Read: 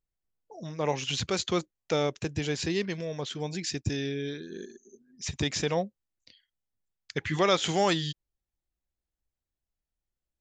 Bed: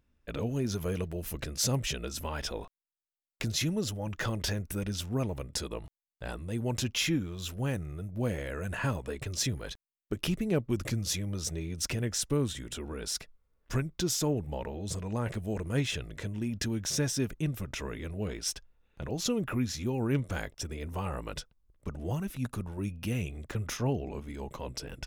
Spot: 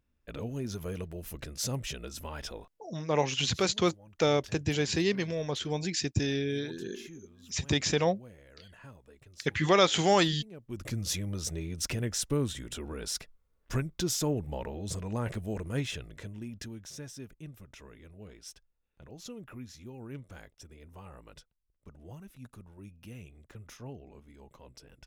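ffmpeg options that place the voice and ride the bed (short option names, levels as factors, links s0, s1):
-filter_complex "[0:a]adelay=2300,volume=1.19[s0];[1:a]volume=5.31,afade=t=out:st=2.5:d=0.37:silence=0.177828,afade=t=in:st=10.61:d=0.44:silence=0.112202,afade=t=out:st=15.3:d=1.62:silence=0.211349[s1];[s0][s1]amix=inputs=2:normalize=0"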